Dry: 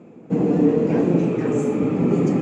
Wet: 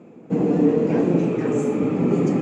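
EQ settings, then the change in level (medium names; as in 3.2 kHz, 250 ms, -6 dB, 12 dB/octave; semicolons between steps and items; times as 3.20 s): bass shelf 95 Hz -6 dB; 0.0 dB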